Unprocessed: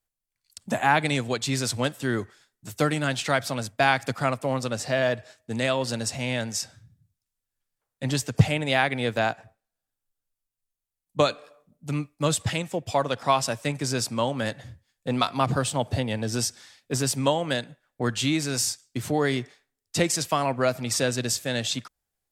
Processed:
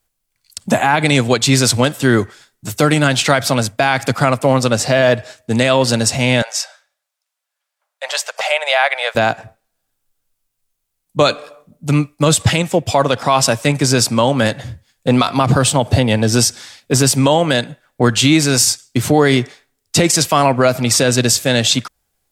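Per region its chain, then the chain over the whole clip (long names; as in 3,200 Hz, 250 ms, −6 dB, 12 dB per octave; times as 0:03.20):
0:06.42–0:09.15: elliptic high-pass filter 580 Hz, stop band 50 dB + high-shelf EQ 6,200 Hz −8.5 dB
whole clip: notch filter 1,800 Hz, Q 25; boost into a limiter +15 dB; level −1 dB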